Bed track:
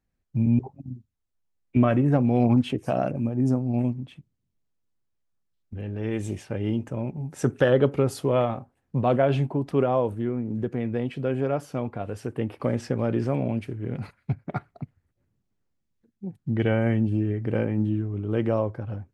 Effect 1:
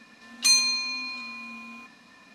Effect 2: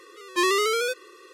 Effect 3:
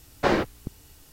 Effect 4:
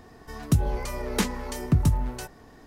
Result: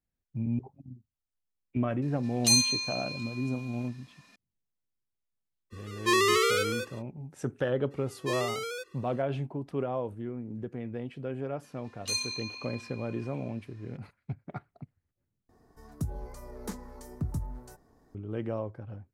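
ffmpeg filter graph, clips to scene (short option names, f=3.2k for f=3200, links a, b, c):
-filter_complex "[1:a]asplit=2[a][b];[2:a]asplit=2[c][d];[0:a]volume=-9.5dB[e];[a]highshelf=f=4.1k:g=9.5[f];[c]aecho=1:1:214:0.501[g];[b]flanger=delay=20:depth=3:speed=1.8[h];[4:a]equalizer=f=2.8k:w=1.1:g=-13.5[i];[e]asplit=2[j][k];[j]atrim=end=15.494[l];[i]atrim=end=2.66,asetpts=PTS-STARTPTS,volume=-12dB[m];[k]atrim=start=18.146[n];[f]atrim=end=2.34,asetpts=PTS-STARTPTS,volume=-8.5dB,afade=t=in:d=0.004:c=hsin,afade=t=out:st=2.336:d=0.004:c=hsin,adelay=2020[o];[g]atrim=end=1.33,asetpts=PTS-STARTPTS,volume=-2dB,afade=t=in:d=0.05,afade=t=out:st=1.28:d=0.05,adelay=5700[p];[d]atrim=end=1.33,asetpts=PTS-STARTPTS,volume=-11.5dB,afade=t=in:d=0.02,afade=t=out:st=1.31:d=0.02,adelay=7900[q];[h]atrim=end=2.34,asetpts=PTS-STARTPTS,volume=-9dB,afade=t=in:d=0.004:c=hsin,afade=t=out:st=2.336:d=0.004:c=hsin,adelay=11630[r];[l][m]acrossfade=d=0.004:c1=hsin:c2=hsin[s];[s][n]acrossfade=d=0.004:c1=hsin:c2=hsin[t];[t][o][p][q][r]amix=inputs=5:normalize=0"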